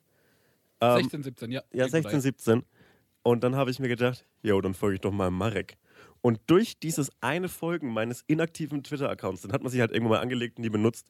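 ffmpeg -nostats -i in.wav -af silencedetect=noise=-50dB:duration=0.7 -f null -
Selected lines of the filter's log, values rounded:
silence_start: 0.00
silence_end: 0.81 | silence_duration: 0.81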